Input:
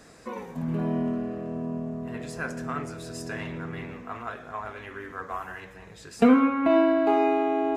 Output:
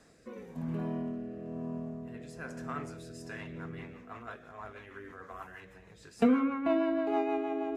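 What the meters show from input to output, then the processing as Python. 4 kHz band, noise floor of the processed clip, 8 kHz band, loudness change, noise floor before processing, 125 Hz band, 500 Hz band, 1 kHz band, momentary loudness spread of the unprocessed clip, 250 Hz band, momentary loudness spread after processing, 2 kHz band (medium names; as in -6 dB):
-9.0 dB, -56 dBFS, -10.5 dB, -7.0 dB, -48 dBFS, -7.0 dB, -8.5 dB, -10.0 dB, 18 LU, -7.5 dB, 18 LU, -9.0 dB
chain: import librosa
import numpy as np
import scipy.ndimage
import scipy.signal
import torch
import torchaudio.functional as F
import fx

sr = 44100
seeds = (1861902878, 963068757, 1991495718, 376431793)

y = fx.rotary_switch(x, sr, hz=1.0, then_hz=6.3, switch_at_s=2.98)
y = y * librosa.db_to_amplitude(-6.0)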